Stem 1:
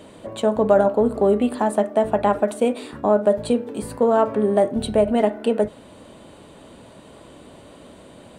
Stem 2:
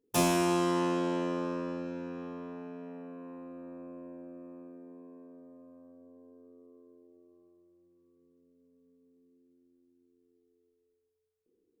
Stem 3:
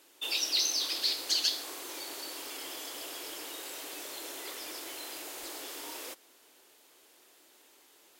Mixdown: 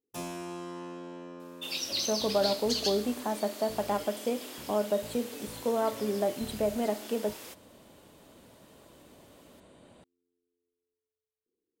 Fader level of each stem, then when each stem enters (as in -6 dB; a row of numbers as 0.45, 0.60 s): -11.5, -12.0, -3.5 dB; 1.65, 0.00, 1.40 s